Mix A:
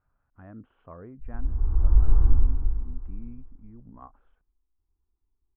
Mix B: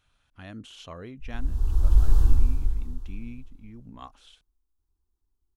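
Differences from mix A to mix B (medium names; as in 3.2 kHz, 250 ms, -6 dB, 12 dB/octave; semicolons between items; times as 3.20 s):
speech +3.0 dB; master: remove inverse Chebyshev low-pass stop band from 4.8 kHz, stop band 60 dB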